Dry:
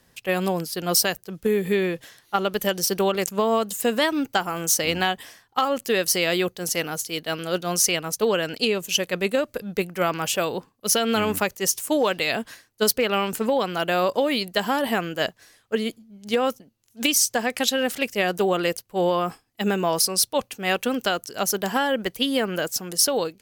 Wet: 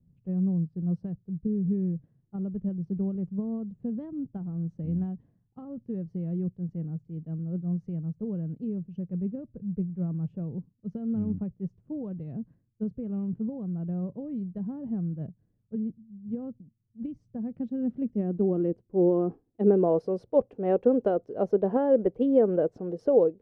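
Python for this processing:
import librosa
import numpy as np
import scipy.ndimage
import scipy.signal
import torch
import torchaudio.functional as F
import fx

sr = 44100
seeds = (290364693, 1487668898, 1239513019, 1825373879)

y = fx.filter_sweep_lowpass(x, sr, from_hz=160.0, to_hz=480.0, start_s=17.21, end_s=19.97, q=2.3)
y = y * 10.0 ** (-1.5 / 20.0)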